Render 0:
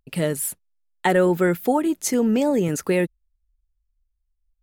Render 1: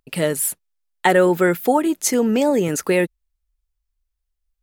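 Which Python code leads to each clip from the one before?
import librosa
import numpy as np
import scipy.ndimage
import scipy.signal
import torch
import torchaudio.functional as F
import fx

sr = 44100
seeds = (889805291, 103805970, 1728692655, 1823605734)

y = fx.low_shelf(x, sr, hz=220.0, db=-9.0)
y = y * librosa.db_to_amplitude(5.0)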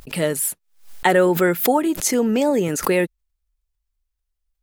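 y = fx.pre_swell(x, sr, db_per_s=130.0)
y = y * librosa.db_to_amplitude(-1.0)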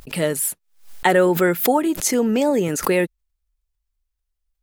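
y = x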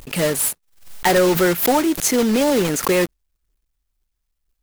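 y = fx.block_float(x, sr, bits=3)
y = 10.0 ** (-11.0 / 20.0) * np.tanh(y / 10.0 ** (-11.0 / 20.0))
y = y * librosa.db_to_amplitude(2.5)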